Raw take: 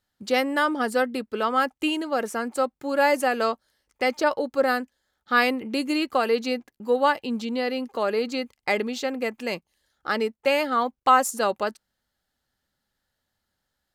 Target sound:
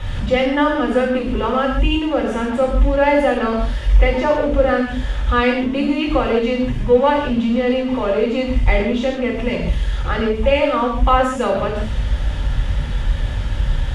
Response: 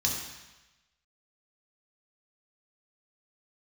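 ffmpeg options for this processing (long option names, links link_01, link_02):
-filter_complex "[0:a]aeval=exprs='val(0)+0.5*0.0376*sgn(val(0))':channel_layout=same,aemphasis=mode=reproduction:type=riaa[link_01];[1:a]atrim=start_sample=2205,atrim=end_sample=3969,asetrate=22932,aresample=44100[link_02];[link_01][link_02]afir=irnorm=-1:irlink=0,volume=-9.5dB"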